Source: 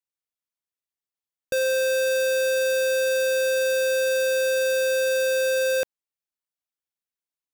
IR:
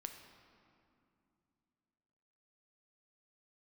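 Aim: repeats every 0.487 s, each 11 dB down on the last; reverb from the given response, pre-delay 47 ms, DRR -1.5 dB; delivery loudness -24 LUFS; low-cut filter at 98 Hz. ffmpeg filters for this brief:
-filter_complex "[0:a]highpass=98,aecho=1:1:487|974|1461:0.282|0.0789|0.0221,asplit=2[a][b];[1:a]atrim=start_sample=2205,adelay=47[c];[b][c]afir=irnorm=-1:irlink=0,volume=5dB[d];[a][d]amix=inputs=2:normalize=0,volume=-3dB"

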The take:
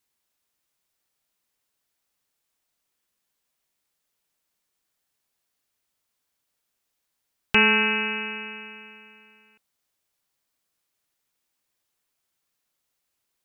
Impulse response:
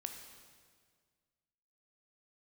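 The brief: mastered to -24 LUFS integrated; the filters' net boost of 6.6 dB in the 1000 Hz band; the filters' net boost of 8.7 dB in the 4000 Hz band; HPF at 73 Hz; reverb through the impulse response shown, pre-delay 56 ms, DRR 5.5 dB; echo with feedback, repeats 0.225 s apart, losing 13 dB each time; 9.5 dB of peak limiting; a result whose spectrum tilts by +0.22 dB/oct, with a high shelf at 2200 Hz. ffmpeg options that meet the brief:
-filter_complex "[0:a]highpass=73,equalizer=f=1k:t=o:g=6,highshelf=f=2.2k:g=8,equalizer=f=4k:t=o:g=6,alimiter=limit=-8dB:level=0:latency=1,aecho=1:1:225|450|675:0.224|0.0493|0.0108,asplit=2[a][b];[1:a]atrim=start_sample=2205,adelay=56[c];[b][c]afir=irnorm=-1:irlink=0,volume=-3.5dB[d];[a][d]amix=inputs=2:normalize=0,volume=-4.5dB"

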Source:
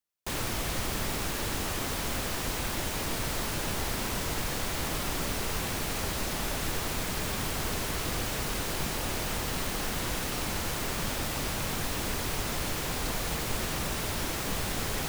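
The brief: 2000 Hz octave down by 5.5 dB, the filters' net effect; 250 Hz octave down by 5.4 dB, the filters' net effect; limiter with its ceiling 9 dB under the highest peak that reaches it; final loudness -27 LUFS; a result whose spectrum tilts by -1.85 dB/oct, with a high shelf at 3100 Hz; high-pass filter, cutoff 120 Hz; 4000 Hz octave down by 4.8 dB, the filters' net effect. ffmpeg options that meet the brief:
-af "highpass=120,equalizer=f=250:t=o:g=-7,equalizer=f=2k:t=o:g=-6.5,highshelf=f=3.1k:g=5,equalizer=f=4k:t=o:g=-8.5,volume=9dB,alimiter=limit=-19.5dB:level=0:latency=1"

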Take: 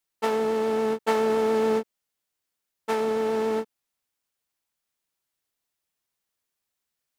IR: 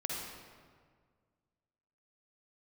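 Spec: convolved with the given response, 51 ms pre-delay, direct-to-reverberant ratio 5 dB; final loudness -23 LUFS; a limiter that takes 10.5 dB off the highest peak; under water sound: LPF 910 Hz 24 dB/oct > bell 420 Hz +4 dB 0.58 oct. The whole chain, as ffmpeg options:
-filter_complex "[0:a]alimiter=limit=-20dB:level=0:latency=1,asplit=2[a][b];[1:a]atrim=start_sample=2205,adelay=51[c];[b][c]afir=irnorm=-1:irlink=0,volume=-8dB[d];[a][d]amix=inputs=2:normalize=0,lowpass=f=910:w=0.5412,lowpass=f=910:w=1.3066,equalizer=f=420:t=o:w=0.58:g=4,volume=2dB"

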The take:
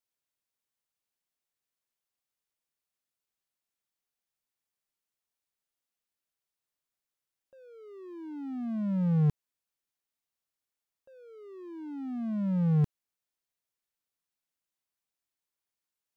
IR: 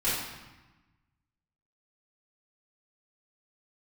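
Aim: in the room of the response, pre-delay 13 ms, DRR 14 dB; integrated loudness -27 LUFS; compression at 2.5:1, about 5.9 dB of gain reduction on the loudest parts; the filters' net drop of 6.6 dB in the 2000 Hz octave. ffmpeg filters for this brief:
-filter_complex "[0:a]equalizer=f=2k:t=o:g=-9,acompressor=threshold=-30dB:ratio=2.5,asplit=2[a][b];[1:a]atrim=start_sample=2205,adelay=13[c];[b][c]afir=irnorm=-1:irlink=0,volume=-24.5dB[d];[a][d]amix=inputs=2:normalize=0,volume=7.5dB"

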